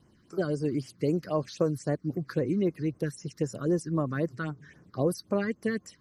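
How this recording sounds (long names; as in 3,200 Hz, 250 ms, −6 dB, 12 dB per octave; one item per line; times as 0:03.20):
phaser sweep stages 6, 3.8 Hz, lowest notch 660–3,800 Hz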